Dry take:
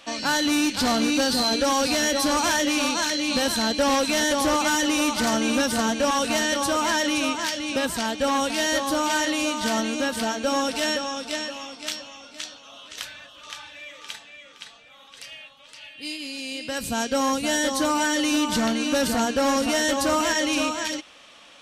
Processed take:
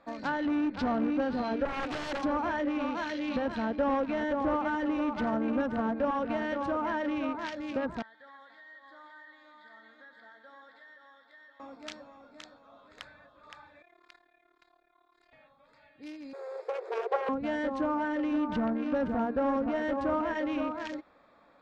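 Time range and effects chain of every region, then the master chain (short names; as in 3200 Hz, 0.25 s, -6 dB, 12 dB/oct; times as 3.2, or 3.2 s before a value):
1.65–2.23 steep high-pass 260 Hz 72 dB/oct + high shelf 4300 Hz -9 dB + wrapped overs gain 19 dB
8.02–11.6 double band-pass 2500 Hz, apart 0.81 oct + compressor 5:1, threshold -36 dBFS + feedback echo 0.122 s, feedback 53%, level -11 dB
13.82–15.33 HPF 120 Hz + AM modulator 36 Hz, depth 90% + robotiser 349 Hz
16.33–17.29 self-modulated delay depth 0.95 ms + brick-wall FIR high-pass 350 Hz + bell 450 Hz +14.5 dB 0.96 oct
whole clip: Wiener smoothing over 15 samples; LPF 3100 Hz 6 dB/oct; treble ducked by the level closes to 1600 Hz, closed at -21 dBFS; gain -5.5 dB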